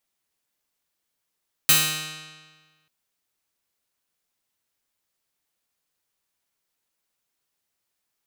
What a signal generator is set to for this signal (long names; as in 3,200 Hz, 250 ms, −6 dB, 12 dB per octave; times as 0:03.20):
Karplus-Strong string D#3, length 1.19 s, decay 1.48 s, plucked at 0.46, bright